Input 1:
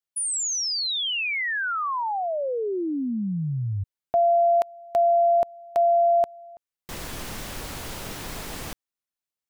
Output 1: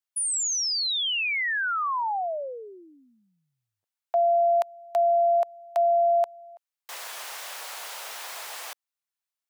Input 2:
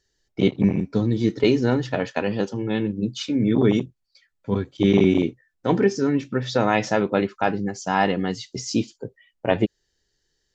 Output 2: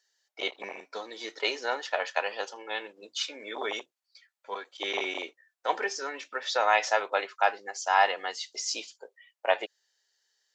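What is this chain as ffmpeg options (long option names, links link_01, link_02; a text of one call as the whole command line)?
ffmpeg -i in.wav -af "highpass=frequency=640:width=0.5412,highpass=frequency=640:width=1.3066" out.wav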